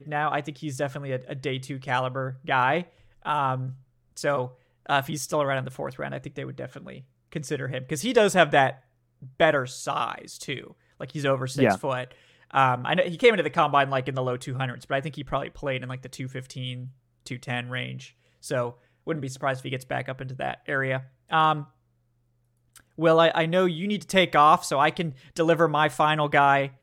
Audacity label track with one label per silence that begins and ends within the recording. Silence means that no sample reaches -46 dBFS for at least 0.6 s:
21.670000	22.760000	silence